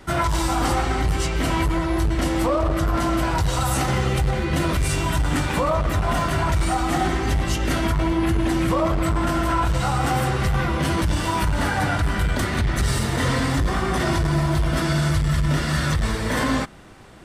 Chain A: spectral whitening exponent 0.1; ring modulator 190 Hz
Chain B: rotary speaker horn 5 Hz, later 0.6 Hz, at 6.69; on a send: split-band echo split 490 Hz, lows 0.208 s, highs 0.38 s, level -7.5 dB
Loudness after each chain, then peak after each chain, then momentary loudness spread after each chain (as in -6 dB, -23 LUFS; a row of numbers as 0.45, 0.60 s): -21.0, -23.5 LUFS; -3.0, -9.5 dBFS; 2, 3 LU